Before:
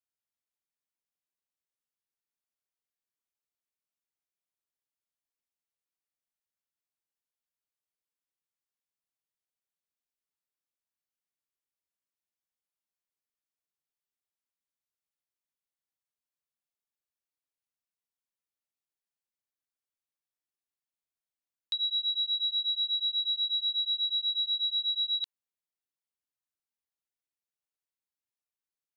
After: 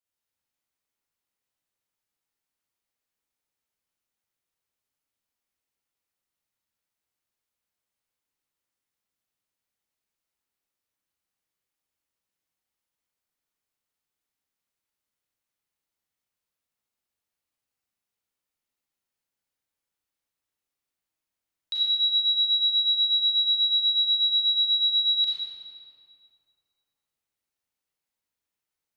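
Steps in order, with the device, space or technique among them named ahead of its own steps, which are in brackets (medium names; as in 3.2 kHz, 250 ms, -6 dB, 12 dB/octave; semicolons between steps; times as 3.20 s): stairwell (reverberation RT60 2.5 s, pre-delay 30 ms, DRR -7 dB)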